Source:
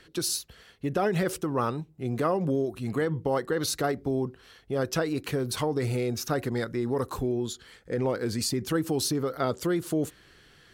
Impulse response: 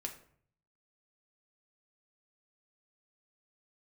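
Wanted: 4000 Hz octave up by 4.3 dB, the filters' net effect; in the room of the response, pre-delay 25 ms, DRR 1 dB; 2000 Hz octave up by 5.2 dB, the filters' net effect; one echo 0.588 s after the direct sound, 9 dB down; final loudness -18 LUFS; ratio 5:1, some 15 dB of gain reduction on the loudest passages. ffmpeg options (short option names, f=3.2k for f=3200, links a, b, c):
-filter_complex "[0:a]equalizer=f=2k:t=o:g=6,equalizer=f=4k:t=o:g=4,acompressor=threshold=-39dB:ratio=5,aecho=1:1:588:0.355,asplit=2[a][b];[1:a]atrim=start_sample=2205,adelay=25[c];[b][c]afir=irnorm=-1:irlink=0,volume=0.5dB[d];[a][d]amix=inputs=2:normalize=0,volume=20dB"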